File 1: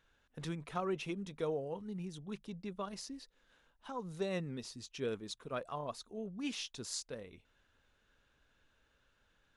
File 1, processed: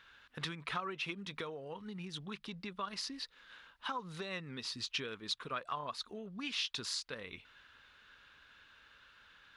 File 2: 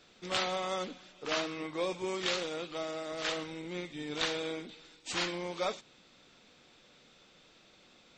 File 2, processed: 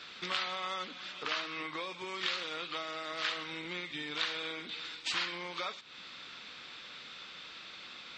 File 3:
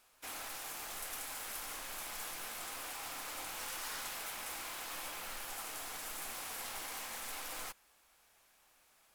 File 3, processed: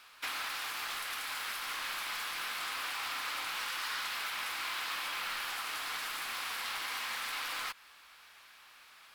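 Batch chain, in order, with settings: high-pass 53 Hz 6 dB/octave; compression 6:1, threshold -46 dBFS; high-order bell 2.2 kHz +11.5 dB 2.6 oct; trim +3.5 dB

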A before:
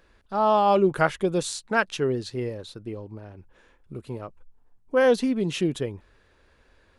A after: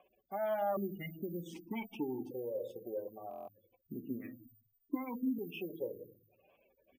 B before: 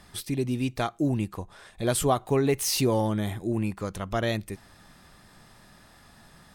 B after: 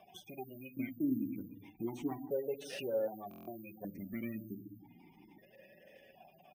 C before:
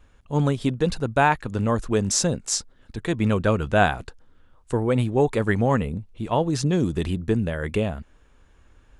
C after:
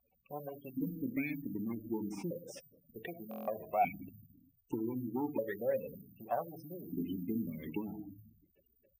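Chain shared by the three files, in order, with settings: comb filter that takes the minimum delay 0.37 ms; speakerphone echo 110 ms, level -20 dB; simulated room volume 510 m³, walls furnished, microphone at 1.1 m; spectral gate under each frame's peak -20 dB strong; careless resampling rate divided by 3×, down none, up zero stuff; compression 2.5:1, threshold -31 dBFS; buffer glitch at 3.29 s, samples 1024, times 7; stepped vowel filter 1.3 Hz; trim +10 dB

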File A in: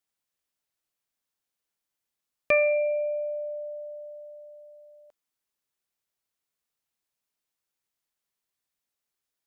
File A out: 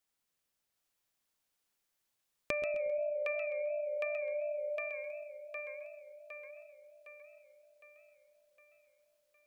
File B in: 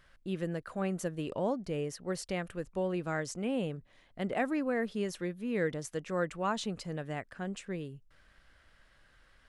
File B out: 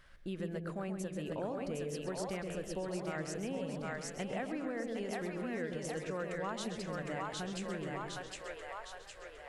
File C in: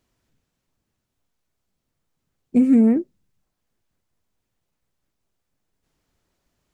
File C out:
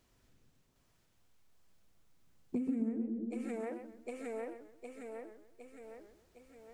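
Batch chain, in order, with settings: bass shelf 81 Hz +6.5 dB; two-band feedback delay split 520 Hz, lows 120 ms, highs 760 ms, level -3 dB; compression 5:1, threshold -36 dBFS; bass shelf 240 Hz -4 dB; modulated delay 131 ms, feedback 33%, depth 169 cents, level -10 dB; trim +1 dB

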